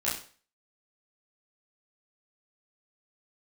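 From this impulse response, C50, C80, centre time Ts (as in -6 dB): 6.0 dB, 10.5 dB, 38 ms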